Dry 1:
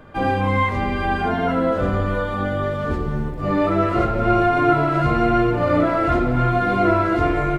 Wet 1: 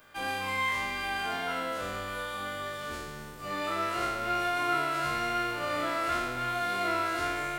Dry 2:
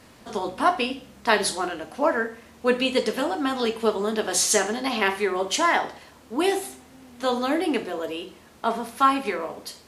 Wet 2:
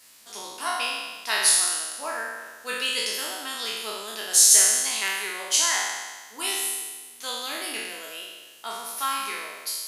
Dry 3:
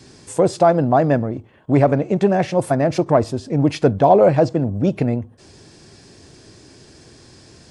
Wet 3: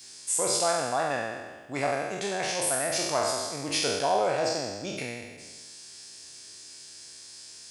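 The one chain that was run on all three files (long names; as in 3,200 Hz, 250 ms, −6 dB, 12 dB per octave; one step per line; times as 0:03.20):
peak hold with a decay on every bin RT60 1.39 s
first-order pre-emphasis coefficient 0.97
level +4.5 dB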